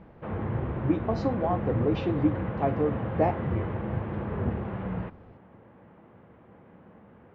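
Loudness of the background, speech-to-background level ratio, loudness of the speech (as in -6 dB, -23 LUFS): -32.0 LUFS, 2.5 dB, -29.5 LUFS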